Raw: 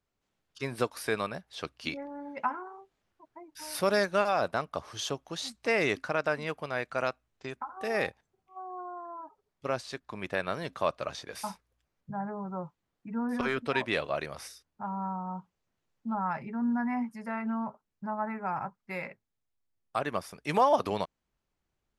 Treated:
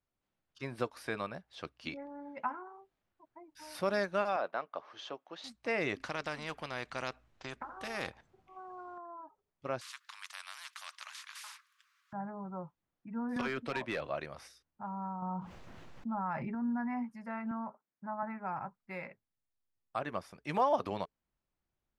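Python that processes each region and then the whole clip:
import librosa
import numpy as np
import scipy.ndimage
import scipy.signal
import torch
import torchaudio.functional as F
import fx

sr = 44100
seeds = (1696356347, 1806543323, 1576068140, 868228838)

y = fx.chain(x, sr, fx.bandpass_edges(low_hz=370.0, high_hz=3500.0),
    fx.quant_float(bits=8), at=(4.36, 5.44))
y = fx.chain(y, sr, fx.high_shelf(hz=10000.0, db=-7.5),
    fx.spectral_comp(ratio=2.0), at=(6.0, 8.98))
y = fx.chain(y, sr, fx.cheby1_highpass(hz=1100.0, order=6),
    fx.spectral_comp(ratio=4.0), at=(9.81, 12.13))
y = fx.chain(y, sr, fx.overload_stage(gain_db=23.5),
    fx.band_squash(depth_pct=100), at=(13.36, 14.09))
y = fx.chain(y, sr, fx.high_shelf(hz=5600.0, db=-8.5),
    fx.env_flatten(amount_pct=70), at=(15.22, 16.55))
y = fx.chain(y, sr, fx.highpass(hz=200.0, slope=12),
    fx.high_shelf_res(hz=2600.0, db=-7.5, q=1.5), at=(17.51, 18.23))
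y = fx.lowpass(y, sr, hz=3500.0, slope=6)
y = fx.notch(y, sr, hz=430.0, q=12.0)
y = y * librosa.db_to_amplitude(-5.0)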